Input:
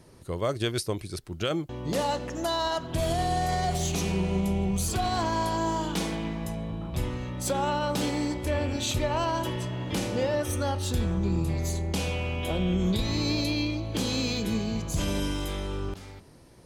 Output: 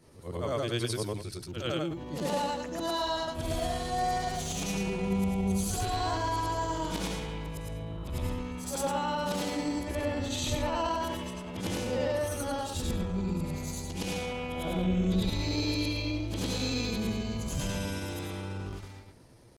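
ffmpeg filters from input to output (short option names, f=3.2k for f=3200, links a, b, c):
-af "afftfilt=real='re':imag='-im':win_size=8192:overlap=0.75,atempo=0.85,volume=1.5dB"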